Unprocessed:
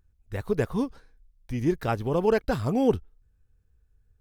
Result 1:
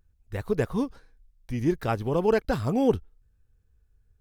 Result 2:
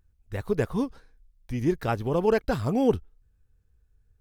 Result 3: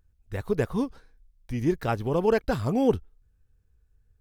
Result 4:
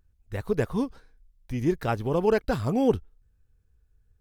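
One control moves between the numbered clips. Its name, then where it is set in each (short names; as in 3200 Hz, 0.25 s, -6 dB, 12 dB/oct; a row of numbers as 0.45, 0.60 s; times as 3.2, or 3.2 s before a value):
vibrato, rate: 0.42, 9, 1.8, 0.73 Hz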